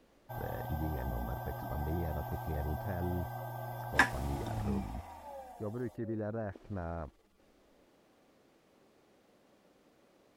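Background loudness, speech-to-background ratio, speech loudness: −39.0 LKFS, −2.0 dB, −41.0 LKFS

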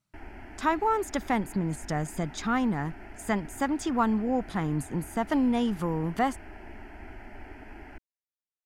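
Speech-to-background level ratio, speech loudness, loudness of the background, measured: 18.0 dB, −29.0 LKFS, −47.0 LKFS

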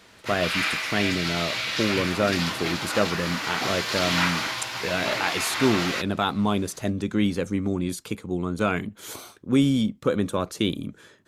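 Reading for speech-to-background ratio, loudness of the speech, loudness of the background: 0.0 dB, −26.5 LKFS, −26.5 LKFS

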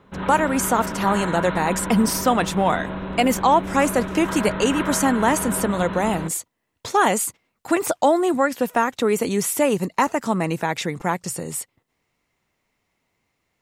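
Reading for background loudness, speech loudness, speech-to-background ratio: −29.0 LKFS, −21.5 LKFS, 7.5 dB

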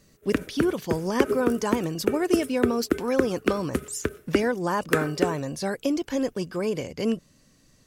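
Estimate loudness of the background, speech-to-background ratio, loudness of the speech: −29.5 LKFS, 1.5 dB, −28.0 LKFS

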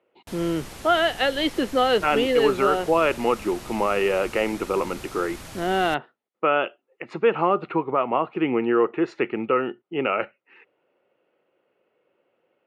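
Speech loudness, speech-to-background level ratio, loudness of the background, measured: −23.5 LKFS, 16.5 dB, −40.0 LKFS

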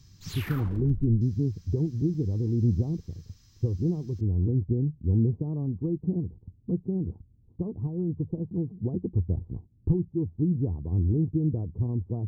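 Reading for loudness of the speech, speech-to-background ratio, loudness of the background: −28.5 LKFS, 12.5 dB, −41.0 LKFS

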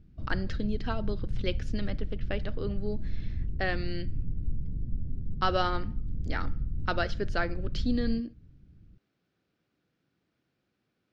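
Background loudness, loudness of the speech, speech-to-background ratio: −37.5 LKFS, −34.0 LKFS, 3.5 dB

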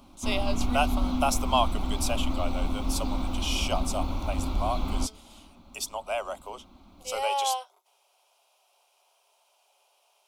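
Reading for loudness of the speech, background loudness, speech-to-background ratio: −31.5 LKFS, −32.0 LKFS, 0.5 dB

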